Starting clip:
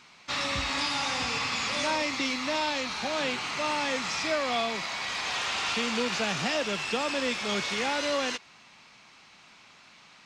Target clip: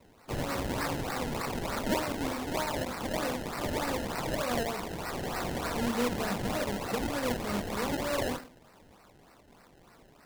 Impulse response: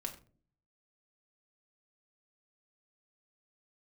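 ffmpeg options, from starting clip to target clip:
-filter_complex "[1:a]atrim=start_sample=2205[a];[0:a][a]afir=irnorm=-1:irlink=0,acrusher=samples=26:mix=1:aa=0.000001:lfo=1:lforange=26:lforate=3.3,volume=-2dB"

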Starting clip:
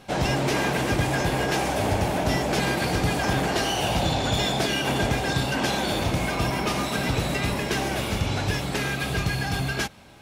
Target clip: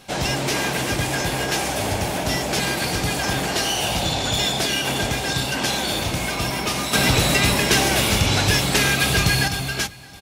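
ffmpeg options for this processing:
-filter_complex "[0:a]aecho=1:1:617:0.133,asettb=1/sr,asplit=3[a][b][c];[a]atrim=end=6.934[d];[b]atrim=start=6.93:end=9.48,asetpts=PTS-STARTPTS,afade=t=in:d=0.004:c=qsin,afade=t=out:st=2.546:d=0.004:c=qsin,acontrast=68[e];[c]atrim=start=9.476[f];[d][e]acrossfade=d=0.004:c1=hsin:c2=qsin[g];[g][f]acrossfade=d=0.004:c1=qsin:c2=hsin,highshelf=f=2.5k:g=9.5,volume=-1dB"

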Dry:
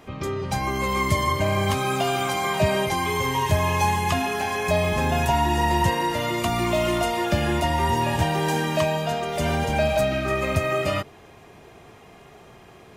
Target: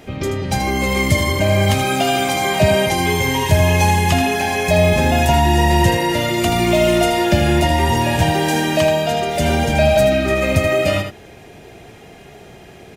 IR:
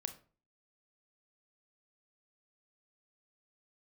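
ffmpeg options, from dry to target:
-filter_complex "[0:a]equalizer=f=1.1k:t=o:w=0.44:g=-12,acontrast=28,asplit=2[a][b];[b]aecho=0:1:80:0.398[c];[a][c]amix=inputs=2:normalize=0,volume=2.5dB"

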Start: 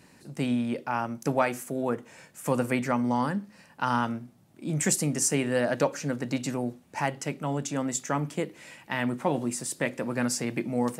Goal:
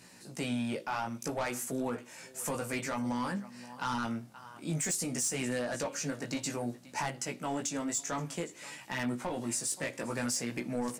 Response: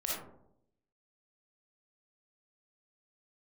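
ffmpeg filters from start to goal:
-filter_complex "[0:a]aecho=1:1:524:0.0708,flanger=delay=16:depth=2.6:speed=0.56,asplit=2[a][b];[b]highpass=f=720:p=1,volume=18dB,asoftclip=type=tanh:threshold=-12.5dB[c];[a][c]amix=inputs=2:normalize=0,lowpass=f=2.6k:p=1,volume=-6dB,bass=f=250:g=8,treble=f=4k:g=14,alimiter=limit=-17.5dB:level=0:latency=1:release=355,volume=-7.5dB"

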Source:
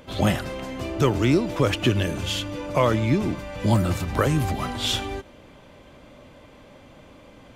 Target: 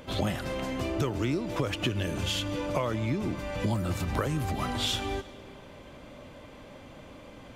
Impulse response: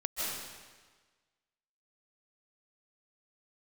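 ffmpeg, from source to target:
-filter_complex "[0:a]acompressor=threshold=-27dB:ratio=5,asplit=2[a][b];[1:a]atrim=start_sample=2205,asetrate=42336,aresample=44100[c];[b][c]afir=irnorm=-1:irlink=0,volume=-24dB[d];[a][d]amix=inputs=2:normalize=0"

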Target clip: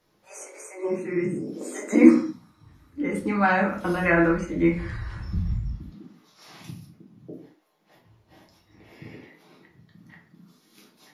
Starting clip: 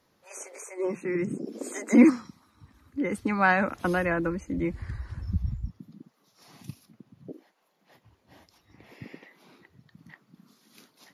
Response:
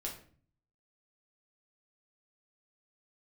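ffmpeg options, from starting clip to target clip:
-filter_complex "[0:a]asettb=1/sr,asplit=3[a][b][c];[a]atrim=end=4.034[d];[b]atrim=start=4.03:end=6.69,asetpts=PTS-STARTPTS,afade=t=in:d=0.004:c=qsin,afade=t=out:st=2.656:d=0.004:c=qsin,equalizer=f=2.1k:w=0.3:g=9[e];[c]atrim=start=6.686[f];[d][e]acrossfade=d=0.004:c1=hsin:c2=qsin[g];[g][f]acrossfade=d=0.004:c1=qsin:c2=hsin[h];[1:a]atrim=start_sample=2205,afade=t=out:st=0.29:d=0.01,atrim=end_sample=13230[i];[h][i]afir=irnorm=-1:irlink=0,volume=1.5dB"

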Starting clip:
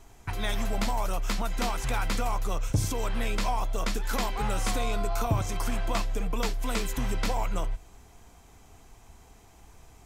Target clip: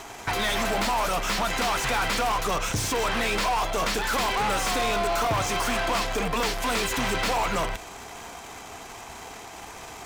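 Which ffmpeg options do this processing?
-filter_complex "[0:a]asplit=2[a][b];[b]acrusher=bits=6:dc=4:mix=0:aa=0.000001,volume=-11dB[c];[a][c]amix=inputs=2:normalize=0,asplit=2[d][e];[e]highpass=f=720:p=1,volume=30dB,asoftclip=type=tanh:threshold=-14dB[f];[d][f]amix=inputs=2:normalize=0,lowpass=f=4.2k:p=1,volume=-6dB,volume=-4dB"

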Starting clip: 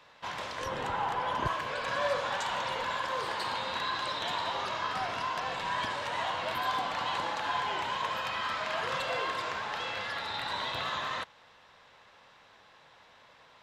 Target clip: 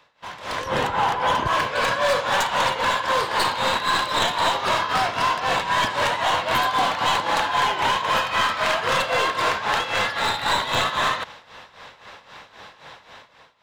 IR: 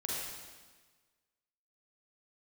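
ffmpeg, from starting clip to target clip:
-filter_complex "[0:a]tremolo=f=3.8:d=0.77,acrossover=split=2500[a][b];[a]alimiter=level_in=6.5dB:limit=-24dB:level=0:latency=1:release=55,volume=-6.5dB[c];[b]aeval=exprs='clip(val(0),-1,0.00282)':c=same[d];[c][d]amix=inputs=2:normalize=0,dynaudnorm=f=150:g=7:m=16dB,volume=1.5dB"

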